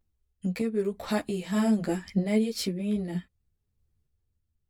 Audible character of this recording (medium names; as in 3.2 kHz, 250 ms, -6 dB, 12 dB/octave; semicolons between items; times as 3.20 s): random-step tremolo 3.2 Hz; a shimmering, thickened sound